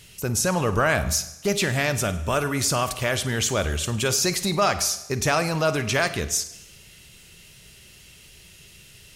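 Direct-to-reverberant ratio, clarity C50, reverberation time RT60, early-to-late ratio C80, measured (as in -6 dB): 11.0 dB, 12.0 dB, 0.90 s, 15.0 dB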